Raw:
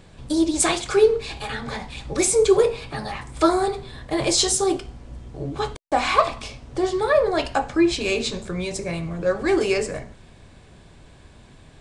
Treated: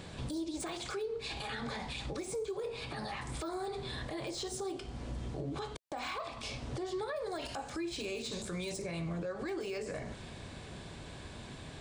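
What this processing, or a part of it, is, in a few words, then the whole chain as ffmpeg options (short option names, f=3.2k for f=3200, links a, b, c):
broadcast voice chain: -filter_complex "[0:a]asettb=1/sr,asplit=3[a][b][c];[a]atrim=end=7.164[d];[b]atrim=start=7.16:end=8.82,asetpts=PTS-STARTPTS,afade=t=in:d=0.004:c=qsin,afade=t=out:st=1.656:d=0.004:c=qsin,aemphasis=mode=production:type=75kf[e];[c]atrim=start=8.816[f];[d][e]acrossfade=d=0.004:c1=hsin:c2=qsin[g];[g][f]acrossfade=d=0.004:c1=qsin:c2=hsin,highpass=f=79:p=1,deesser=0.75,acompressor=threshold=-34dB:ratio=5,equalizer=f=3.9k:t=o:w=0.77:g=2.5,alimiter=level_in=9.5dB:limit=-24dB:level=0:latency=1:release=114,volume=-9.5dB,volume=3dB"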